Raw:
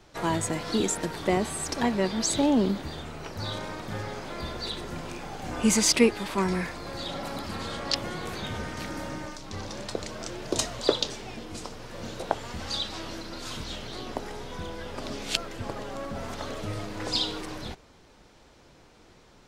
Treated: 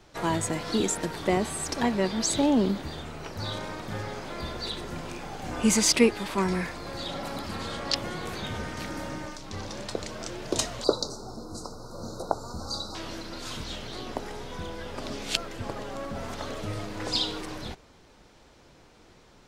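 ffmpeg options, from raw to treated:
-filter_complex "[0:a]asettb=1/sr,asplit=3[a][b][c];[a]atrim=end=10.844[d];[b]atrim=start=10.84:end=12.95,asetpts=PTS-STARTPTS,afade=t=in:d=0.004:c=qsin,afade=t=out:st=2.106:d=0.004:c=qsin,asuperstop=centerf=2400:order=20:qfactor=0.97[e];[c]atrim=start=12.946[f];[d][e]acrossfade=d=0.004:c1=hsin:c2=qsin[g];[g][f]acrossfade=d=0.004:c1=qsin:c2=hsin"

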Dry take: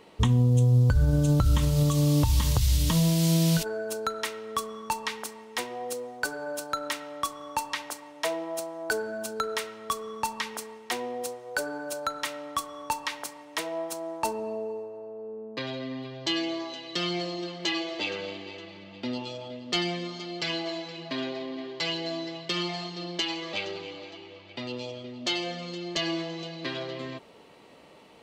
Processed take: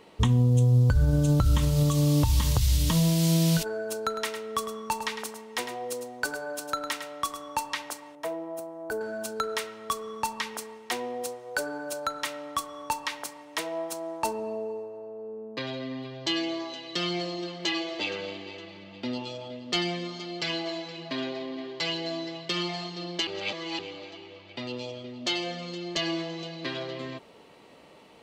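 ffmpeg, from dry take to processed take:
-filter_complex "[0:a]asettb=1/sr,asplit=3[a][b][c];[a]atrim=end=3.964[d];[b]atrim=start=3.96:end=7.48,asetpts=PTS-STARTPTS,afade=t=in:d=0.004:c=qsin,afade=t=out:st=3.516:d=0.004:c=qsin,aecho=1:1:105:0.316,atrim=end_sample=155232[e];[c]atrim=start=7.476[f];[d][e]acrossfade=d=0.004:c1=hsin:c2=qsin[g];[g][f]acrossfade=d=0.004:c1=qsin:c2=hsin,asettb=1/sr,asplit=3[h][i][j];[h]atrim=end=8.154[k];[i]atrim=start=8.15:end=9.01,asetpts=PTS-STARTPTS,afade=t=in:d=0.004:c=qsin,afade=t=out:st=0.856:d=0.004:c=qsin,equalizer=f=4.4k:w=0.34:g=-14.5[l];[j]atrim=start=9.006[m];[k][l]acrossfade=d=0.004:c1=hsin:c2=qsin[n];[n][m]acrossfade=d=0.004:c1=qsin:c2=hsin,asplit=3[o][p][q];[o]atrim=end=23.272[r];[p]atrim=start=23.268:end=23.792,asetpts=PTS-STARTPTS,areverse[s];[q]atrim=start=23.788[t];[r][s]acrossfade=d=0.004:c1=hsin:c2=hsin[u];[u][t]acrossfade=d=0.004:c1=hsin:c2=hsin"

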